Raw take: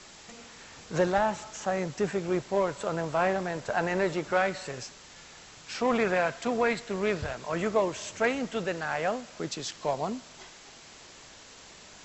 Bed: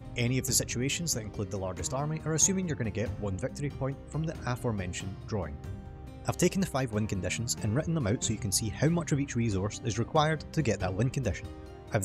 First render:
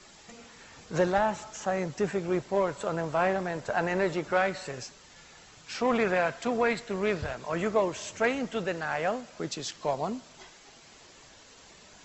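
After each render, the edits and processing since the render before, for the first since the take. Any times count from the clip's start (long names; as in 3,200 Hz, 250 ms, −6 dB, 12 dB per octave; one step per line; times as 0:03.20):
broadband denoise 6 dB, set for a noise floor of −51 dBFS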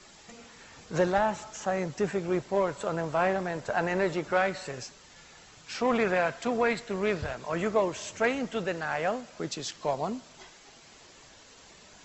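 no processing that can be heard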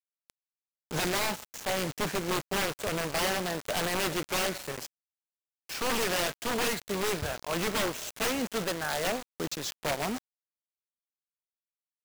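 bit reduction 6 bits
wrap-around overflow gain 23.5 dB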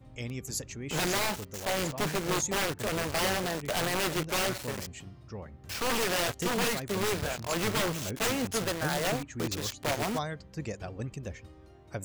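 mix in bed −8.5 dB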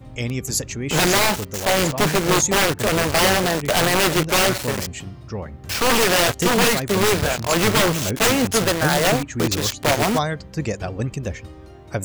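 level +12 dB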